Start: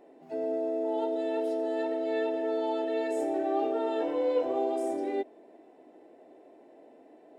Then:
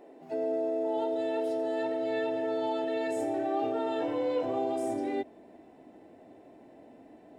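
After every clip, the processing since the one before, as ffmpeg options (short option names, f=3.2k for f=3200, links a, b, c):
-filter_complex "[0:a]asubboost=boost=10:cutoff=130,asplit=2[a][b];[b]alimiter=level_in=4.5dB:limit=-24dB:level=0:latency=1,volume=-4.5dB,volume=0.5dB[c];[a][c]amix=inputs=2:normalize=0,volume=-3dB"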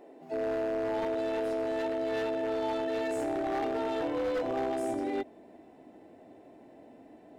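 -af "aeval=exprs='0.0531*(abs(mod(val(0)/0.0531+3,4)-2)-1)':c=same"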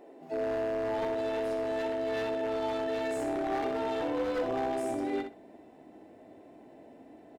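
-af "aecho=1:1:62|124|186:0.398|0.0717|0.0129"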